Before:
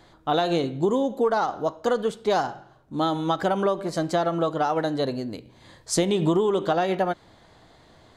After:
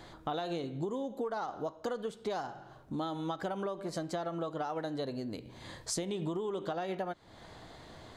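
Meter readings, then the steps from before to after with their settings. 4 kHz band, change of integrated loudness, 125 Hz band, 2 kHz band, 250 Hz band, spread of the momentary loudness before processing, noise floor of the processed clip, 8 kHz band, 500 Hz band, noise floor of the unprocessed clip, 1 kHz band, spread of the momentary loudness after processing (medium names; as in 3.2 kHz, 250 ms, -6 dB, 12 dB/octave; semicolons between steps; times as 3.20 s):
-11.5 dB, -13.0 dB, -11.0 dB, -12.5 dB, -12.0 dB, 6 LU, -55 dBFS, -8.5 dB, -13.0 dB, -55 dBFS, -13.0 dB, 12 LU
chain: compression 4:1, threshold -39 dBFS, peak gain reduction 18 dB; trim +2.5 dB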